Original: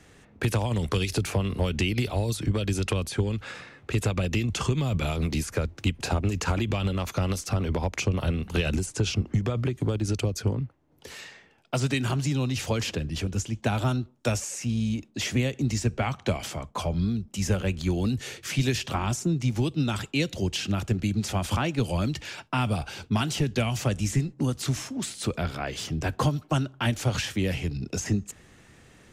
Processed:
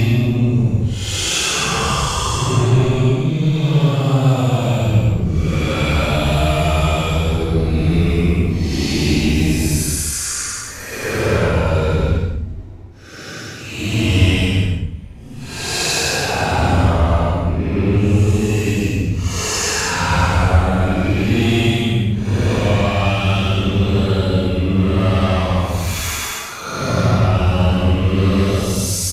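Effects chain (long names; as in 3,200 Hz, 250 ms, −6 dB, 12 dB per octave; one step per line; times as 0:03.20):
leveller curve on the samples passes 2
downsampling to 32,000 Hz
extreme stretch with random phases 9.8×, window 0.10 s, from 0:04.42
level +6 dB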